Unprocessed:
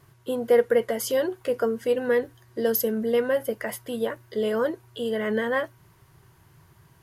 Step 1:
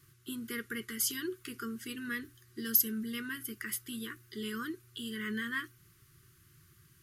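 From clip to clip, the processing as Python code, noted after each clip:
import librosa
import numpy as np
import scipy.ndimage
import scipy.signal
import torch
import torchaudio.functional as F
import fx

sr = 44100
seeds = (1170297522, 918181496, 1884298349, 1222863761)

y = scipy.signal.sosfilt(scipy.signal.ellip(3, 1.0, 40, [370.0, 1200.0], 'bandstop', fs=sr, output='sos'), x)
y = fx.high_shelf(y, sr, hz=3000.0, db=8.5)
y = y * 10.0 ** (-7.0 / 20.0)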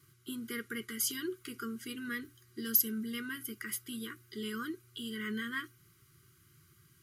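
y = fx.notch_comb(x, sr, f0_hz=880.0)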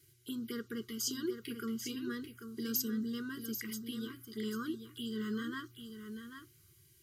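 y = fx.env_phaser(x, sr, low_hz=180.0, high_hz=2300.0, full_db=-37.0)
y = y + 10.0 ** (-8.5 / 20.0) * np.pad(y, (int(790 * sr / 1000.0), 0))[:len(y)]
y = y * 10.0 ** (1.5 / 20.0)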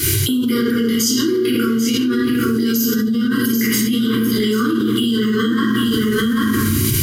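y = fx.room_shoebox(x, sr, seeds[0], volume_m3=280.0, walls='mixed', distance_m=2.5)
y = fx.env_flatten(y, sr, amount_pct=100)
y = y * 10.0 ** (4.0 / 20.0)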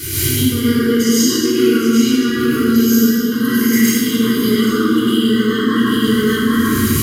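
y = fx.rev_plate(x, sr, seeds[1], rt60_s=1.7, hf_ratio=0.8, predelay_ms=90, drr_db=-10.0)
y = y * 10.0 ** (-7.5 / 20.0)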